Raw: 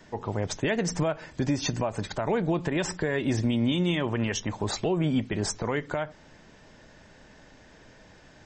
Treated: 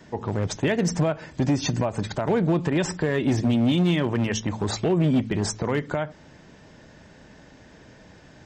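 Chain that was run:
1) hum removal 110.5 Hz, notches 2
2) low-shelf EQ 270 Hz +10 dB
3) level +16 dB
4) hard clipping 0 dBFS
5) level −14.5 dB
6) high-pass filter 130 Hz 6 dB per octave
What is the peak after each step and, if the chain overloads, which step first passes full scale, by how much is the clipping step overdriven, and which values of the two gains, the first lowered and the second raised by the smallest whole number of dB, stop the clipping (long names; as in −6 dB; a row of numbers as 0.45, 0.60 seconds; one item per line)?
−15.0, −9.5, +6.5, 0.0, −14.5, −11.5 dBFS
step 3, 6.5 dB
step 3 +9 dB, step 5 −7.5 dB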